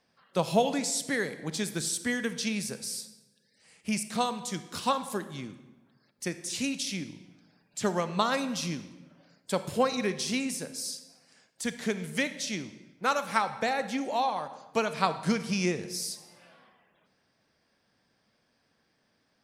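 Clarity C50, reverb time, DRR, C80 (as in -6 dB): 12.0 dB, 1.1 s, 11.0 dB, 14.5 dB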